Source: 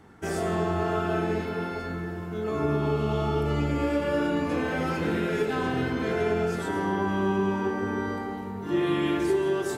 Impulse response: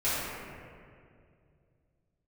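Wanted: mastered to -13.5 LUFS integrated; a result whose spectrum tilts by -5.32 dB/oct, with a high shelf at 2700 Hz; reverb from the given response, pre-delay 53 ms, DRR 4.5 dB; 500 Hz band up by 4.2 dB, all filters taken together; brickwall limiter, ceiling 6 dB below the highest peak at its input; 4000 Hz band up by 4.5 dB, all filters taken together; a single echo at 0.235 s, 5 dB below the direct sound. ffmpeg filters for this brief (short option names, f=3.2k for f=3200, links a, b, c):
-filter_complex "[0:a]equalizer=f=500:t=o:g=5.5,highshelf=f=2.7k:g=3,equalizer=f=4k:t=o:g=3.5,alimiter=limit=-17dB:level=0:latency=1,aecho=1:1:235:0.562,asplit=2[a][b];[1:a]atrim=start_sample=2205,adelay=53[c];[b][c]afir=irnorm=-1:irlink=0,volume=-16dB[d];[a][d]amix=inputs=2:normalize=0,volume=10dB"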